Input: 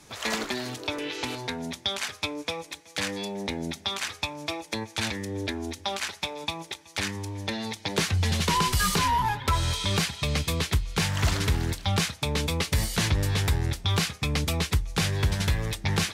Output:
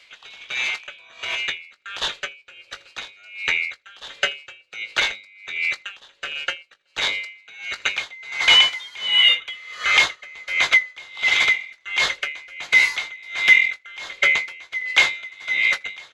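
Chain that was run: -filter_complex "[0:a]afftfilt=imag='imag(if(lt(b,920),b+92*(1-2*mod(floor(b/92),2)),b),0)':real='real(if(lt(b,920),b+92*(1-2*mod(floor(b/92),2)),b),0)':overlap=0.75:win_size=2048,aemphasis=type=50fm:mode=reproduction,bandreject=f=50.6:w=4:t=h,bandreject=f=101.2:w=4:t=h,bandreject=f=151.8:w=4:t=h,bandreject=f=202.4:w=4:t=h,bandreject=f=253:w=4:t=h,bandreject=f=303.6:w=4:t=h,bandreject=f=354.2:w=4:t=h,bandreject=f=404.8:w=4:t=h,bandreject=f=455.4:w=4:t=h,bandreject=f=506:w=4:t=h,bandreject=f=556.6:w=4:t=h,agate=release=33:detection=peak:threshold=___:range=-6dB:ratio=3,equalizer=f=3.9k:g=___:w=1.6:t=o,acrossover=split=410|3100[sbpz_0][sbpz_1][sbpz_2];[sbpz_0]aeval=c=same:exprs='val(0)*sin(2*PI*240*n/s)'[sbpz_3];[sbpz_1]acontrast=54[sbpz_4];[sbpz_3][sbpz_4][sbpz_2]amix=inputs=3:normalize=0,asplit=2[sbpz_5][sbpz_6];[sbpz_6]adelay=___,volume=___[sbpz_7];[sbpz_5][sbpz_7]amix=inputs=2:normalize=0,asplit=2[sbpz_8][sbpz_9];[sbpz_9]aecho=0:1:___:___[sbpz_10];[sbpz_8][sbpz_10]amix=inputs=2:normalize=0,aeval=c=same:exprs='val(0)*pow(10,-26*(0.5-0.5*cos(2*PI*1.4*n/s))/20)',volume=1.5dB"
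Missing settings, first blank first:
-39dB, 12.5, 20, -11.5dB, 81, 0.0631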